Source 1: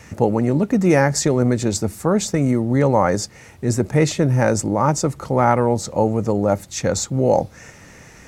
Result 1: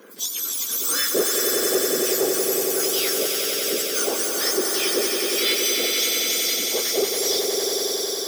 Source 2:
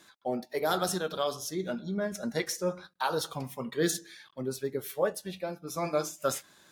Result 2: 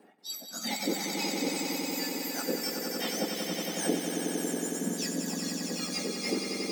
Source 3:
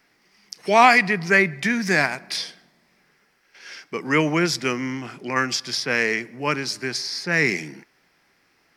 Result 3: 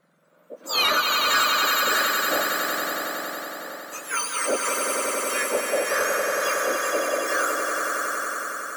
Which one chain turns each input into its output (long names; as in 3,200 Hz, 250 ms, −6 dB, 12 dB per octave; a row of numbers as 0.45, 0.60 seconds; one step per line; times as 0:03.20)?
frequency axis turned over on the octave scale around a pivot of 1,700 Hz
echo that builds up and dies away 92 ms, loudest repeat 5, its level −6 dB
harmonic generator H 5 −17 dB, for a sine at −2.5 dBFS
level −7 dB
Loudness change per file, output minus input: −1.5, +1.0, −2.0 LU